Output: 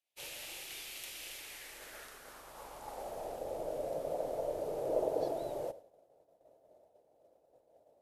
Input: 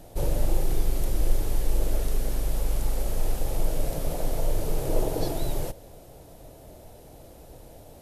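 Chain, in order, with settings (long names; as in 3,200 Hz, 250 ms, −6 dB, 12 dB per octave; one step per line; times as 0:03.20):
first-order pre-emphasis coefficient 0.8
band-pass filter sweep 2,600 Hz → 580 Hz, 0:01.30–0:03.45
downward expander −57 dBFS
level +14 dB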